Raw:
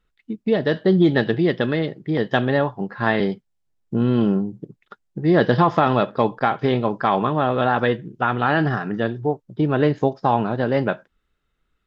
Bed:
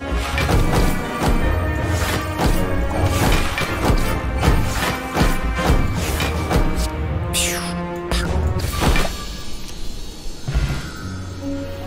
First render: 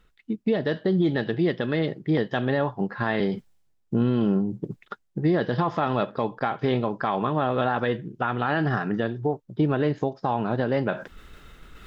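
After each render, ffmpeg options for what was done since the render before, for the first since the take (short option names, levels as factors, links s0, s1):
-af "areverse,acompressor=mode=upward:threshold=0.0631:ratio=2.5,areverse,alimiter=limit=0.2:level=0:latency=1:release=252"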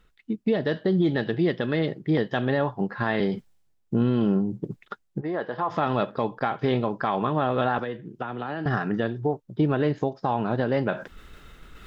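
-filter_complex "[0:a]asplit=3[s0][s1][s2];[s0]afade=t=out:st=5.2:d=0.02[s3];[s1]bandpass=f=950:t=q:w=0.89,afade=t=in:st=5.2:d=0.02,afade=t=out:st=5.69:d=0.02[s4];[s2]afade=t=in:st=5.69:d=0.02[s5];[s3][s4][s5]amix=inputs=3:normalize=0,asettb=1/sr,asplit=3[s6][s7][s8];[s6]atrim=end=7.784[s9];[s7]atrim=start=7.78:end=8.66,asetpts=PTS-STARTPTS,afade=t=in:d=0.004:c=qsin,afade=t=out:st=0.876:d=0.004:c=qsin,acrossover=split=200|850|2600[s10][s11][s12][s13];[s10]acompressor=threshold=0.00562:ratio=3[s14];[s11]acompressor=threshold=0.0251:ratio=3[s15];[s12]acompressor=threshold=0.00891:ratio=3[s16];[s13]acompressor=threshold=0.00224:ratio=3[s17];[s14][s15][s16][s17]amix=inputs=4:normalize=0[s18];[s8]atrim=start=8.656[s19];[s9][s18]acrossfade=d=0.004:c1=hsin:c2=qsin[s20];[s20][s19]acrossfade=d=0.004:c1=qsin:c2=hsin"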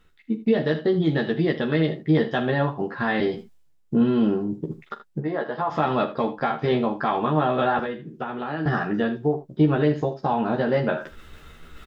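-filter_complex "[0:a]asplit=2[s0][s1];[s1]adelay=13,volume=0.75[s2];[s0][s2]amix=inputs=2:normalize=0,aecho=1:1:43|78:0.178|0.2"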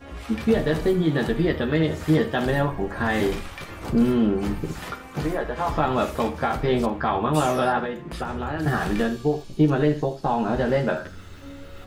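-filter_complex "[1:a]volume=0.168[s0];[0:a][s0]amix=inputs=2:normalize=0"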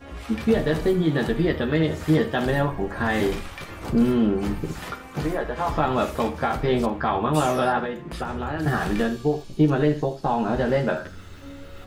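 -af anull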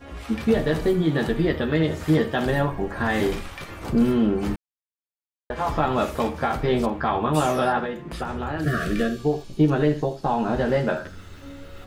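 -filter_complex "[0:a]asettb=1/sr,asplit=3[s0][s1][s2];[s0]atrim=end=8.644[s3];[s1]atrim=start=8.64:end=9.19,asetpts=PTS-STARTPTS,afade=t=in:d=0.004:c=qsin,afade=t=out:st=0.546:d=0.004:c=qsin,asuperstop=centerf=890:order=20:qfactor=2.3[s4];[s2]atrim=start=9.186[s5];[s3][s4]acrossfade=d=0.004:c1=hsin:c2=qsin[s6];[s6][s5]acrossfade=d=0.004:c1=qsin:c2=hsin,asplit=3[s7][s8][s9];[s7]atrim=end=4.56,asetpts=PTS-STARTPTS,afade=t=out:st=4.556:d=0.004:c=hsin[s10];[s8]atrim=start=4.56:end=5.5,asetpts=PTS-STARTPTS,volume=0[s11];[s9]atrim=start=5.5,asetpts=PTS-STARTPTS,afade=t=in:d=0.004:c=hsin[s12];[s10][s11][s12]concat=n=3:v=0:a=1"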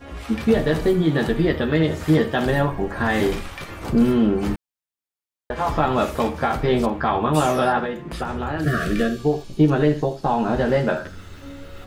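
-af "volume=1.33"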